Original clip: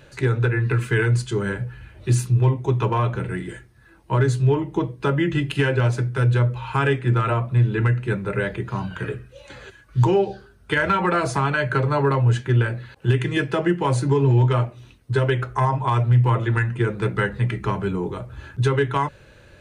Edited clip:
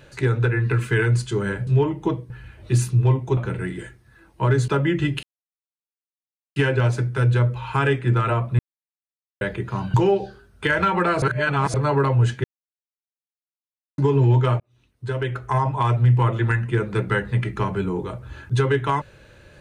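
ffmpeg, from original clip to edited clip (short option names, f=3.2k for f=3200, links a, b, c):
-filter_complex "[0:a]asplit=14[a][b][c][d][e][f][g][h][i][j][k][l][m][n];[a]atrim=end=1.672[o];[b]atrim=start=4.378:end=5.012[p];[c]atrim=start=1.668:end=2.742[q];[d]atrim=start=3.068:end=4.382[r];[e]atrim=start=5.008:end=5.56,asetpts=PTS-STARTPTS,afade=t=out:st=0.548:d=0.004:c=hsin,apad=pad_dur=1.33[s];[f]atrim=start=5.56:end=7.59,asetpts=PTS-STARTPTS,afade=t=in:d=0.004:c=hsin,afade=t=out:st=2.026:d=0.004:c=hsin[t];[g]atrim=start=7.59:end=8.41,asetpts=PTS-STARTPTS,volume=0[u];[h]atrim=start=8.41:end=8.942,asetpts=PTS-STARTPTS,afade=t=in:d=0.004:c=hsin[v];[i]atrim=start=10.008:end=11.292[w];[j]atrim=start=11.288:end=11.812,asetpts=PTS-STARTPTS,areverse[x];[k]atrim=start=11.808:end=12.51,asetpts=PTS-STARTPTS,afade=t=out:st=0.698:d=0.004:c=hsin[y];[l]atrim=start=12.51:end=14.05,asetpts=PTS-STARTPTS,volume=0[z];[m]atrim=start=14.05:end=14.67,asetpts=PTS-STARTPTS,afade=t=in:d=0.004:c=hsin,afade=t=out:st=0.616:d=0.004:c=hsin[aa];[n]atrim=start=14.67,asetpts=PTS-STARTPTS,afade=t=in:d=1.08[ab];[o][p]acrossfade=d=0.004:c1=hsin:c2=hsin[ac];[ac][q]acrossfade=d=0.004:c1=hsin:c2=hsin[ad];[ad][r]acrossfade=d=0.004:c1=hsin:c2=hsin[ae];[s][t][u][v]concat=n=4:v=0:a=1[af];[ae][af]acrossfade=d=0.004:c1=hsin:c2=hsin[ag];[ag][w]acrossfade=d=0.004:c1=hsin:c2=hsin[ah];[ah][x]acrossfade=d=0.004:c1=hsin:c2=hsin[ai];[y][z][aa][ab]concat=n=4:v=0:a=1[aj];[ai][aj]acrossfade=d=0.004:c1=hsin:c2=hsin"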